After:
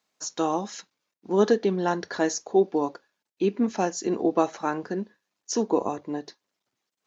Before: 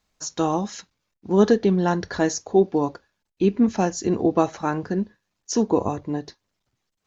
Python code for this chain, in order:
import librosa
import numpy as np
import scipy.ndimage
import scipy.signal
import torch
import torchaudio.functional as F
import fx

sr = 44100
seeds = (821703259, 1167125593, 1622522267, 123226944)

y = scipy.signal.sosfilt(scipy.signal.butter(2, 260.0, 'highpass', fs=sr, output='sos'), x)
y = F.gain(torch.from_numpy(y), -2.0).numpy()